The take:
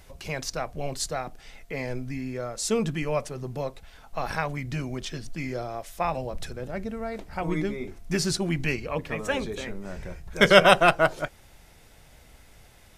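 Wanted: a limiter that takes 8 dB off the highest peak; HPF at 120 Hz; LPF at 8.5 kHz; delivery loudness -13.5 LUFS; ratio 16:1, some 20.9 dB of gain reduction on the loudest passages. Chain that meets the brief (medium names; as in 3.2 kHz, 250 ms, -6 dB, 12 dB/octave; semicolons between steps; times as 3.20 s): high-pass 120 Hz; low-pass 8.5 kHz; compression 16:1, threshold -31 dBFS; trim +24.5 dB; peak limiter -1.5 dBFS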